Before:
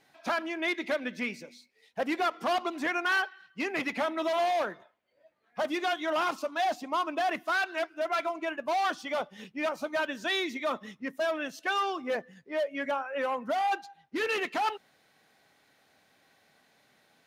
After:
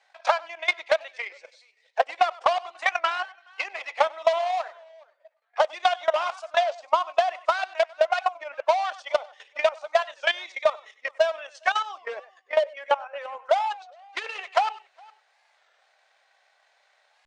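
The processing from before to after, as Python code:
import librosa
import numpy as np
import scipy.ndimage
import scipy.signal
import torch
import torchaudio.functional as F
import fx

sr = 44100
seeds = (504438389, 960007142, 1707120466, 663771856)

p1 = scipy.signal.sosfilt(scipy.signal.butter(6, 570.0, 'highpass', fs=sr, output='sos'), x)
p2 = fx.high_shelf(p1, sr, hz=5200.0, db=-6.5)
p3 = fx.level_steps(p2, sr, step_db=10)
p4 = scipy.signal.sosfilt(scipy.signal.butter(12, 8900.0, 'lowpass', fs=sr, output='sos'), p3)
p5 = p4 + 10.0 ** (-15.0 / 20.0) * np.pad(p4, (int(97 * sr / 1000.0), 0))[:len(p4)]
p6 = fx.dynamic_eq(p5, sr, hz=1600.0, q=2.1, threshold_db=-49.0, ratio=4.0, max_db=-5)
p7 = p6 + fx.echo_single(p6, sr, ms=412, db=-22.5, dry=0)
p8 = fx.transient(p7, sr, attack_db=12, sustain_db=-1)
p9 = fx.record_warp(p8, sr, rpm=33.33, depth_cents=160.0)
y = p9 * 10.0 ** (4.0 / 20.0)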